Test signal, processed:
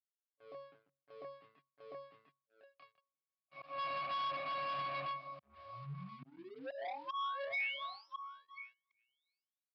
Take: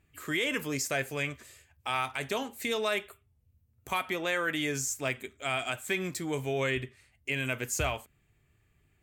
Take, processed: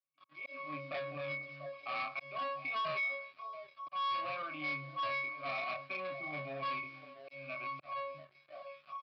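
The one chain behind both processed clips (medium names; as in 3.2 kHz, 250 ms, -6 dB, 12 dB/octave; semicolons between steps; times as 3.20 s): tilt shelf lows -4 dB, about 720 Hz; pitch-class resonator C#, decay 0.43 s; repeats whose band climbs or falls 344 ms, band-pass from 190 Hz, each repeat 1.4 oct, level -10 dB; level rider gain up to 10 dB; peak limiter -33 dBFS; doubling 27 ms -3 dB; slow attack 345 ms; vowel filter a; waveshaping leveller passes 3; resampled via 11.025 kHz; high-pass 120 Hz 24 dB/octave; peaking EQ 470 Hz -7.5 dB 2.3 oct; trim +12 dB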